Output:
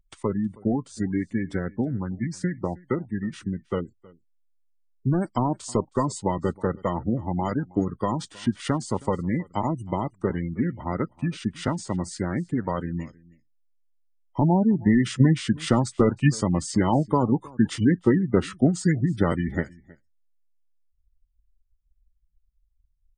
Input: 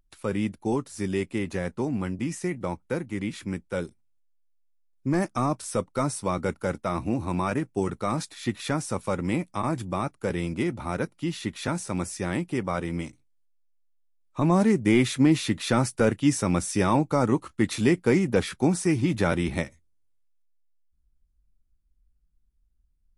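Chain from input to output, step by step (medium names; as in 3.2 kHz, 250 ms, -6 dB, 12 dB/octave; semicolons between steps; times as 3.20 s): formant shift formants -3 st; transient shaper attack +5 dB, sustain -2 dB; spectral gate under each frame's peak -25 dB strong; on a send: delay 318 ms -23.5 dB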